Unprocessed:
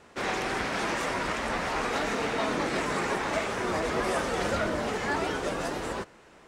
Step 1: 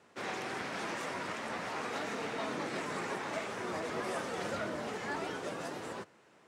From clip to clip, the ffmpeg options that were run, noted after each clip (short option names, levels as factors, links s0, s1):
-af "highpass=f=99:w=0.5412,highpass=f=99:w=1.3066,volume=0.376"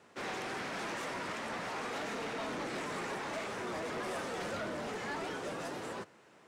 -af "asoftclip=type=tanh:threshold=0.0168,volume=1.26"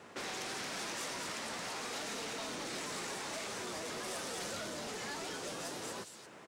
-filter_complex "[0:a]acrossover=split=3700[s0][s1];[s0]acompressor=threshold=0.00316:ratio=5[s2];[s1]aecho=1:1:223:0.631[s3];[s2][s3]amix=inputs=2:normalize=0,volume=2.24"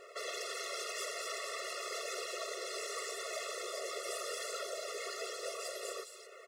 -af "afftfilt=real='hypot(re,im)*cos(2*PI*random(0))':imag='hypot(re,im)*sin(2*PI*random(1))':win_size=512:overlap=0.75,afftfilt=real='re*eq(mod(floor(b*sr/1024/360),2),1)':imag='im*eq(mod(floor(b*sr/1024/360),2),1)':win_size=1024:overlap=0.75,volume=2.99"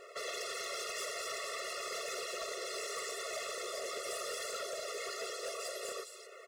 -af "volume=59.6,asoftclip=hard,volume=0.0168,volume=1.12"